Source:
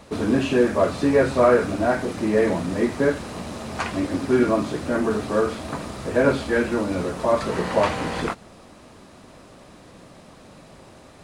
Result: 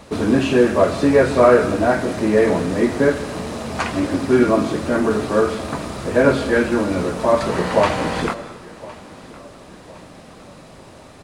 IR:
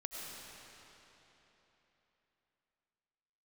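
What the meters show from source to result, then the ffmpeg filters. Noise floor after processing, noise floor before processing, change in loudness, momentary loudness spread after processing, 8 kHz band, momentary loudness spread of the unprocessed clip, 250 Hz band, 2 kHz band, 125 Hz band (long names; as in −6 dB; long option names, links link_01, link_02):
−42 dBFS, −48 dBFS, +4.5 dB, 12 LU, +4.5 dB, 11 LU, +4.5 dB, +4.5 dB, +4.0 dB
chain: -filter_complex "[0:a]aecho=1:1:1061|2122|3183:0.0944|0.0387|0.0159,asplit=2[link_01][link_02];[1:a]atrim=start_sample=2205,afade=type=out:start_time=0.34:duration=0.01,atrim=end_sample=15435[link_03];[link_02][link_03]afir=irnorm=-1:irlink=0,volume=-7dB[link_04];[link_01][link_04]amix=inputs=2:normalize=0,volume=2dB"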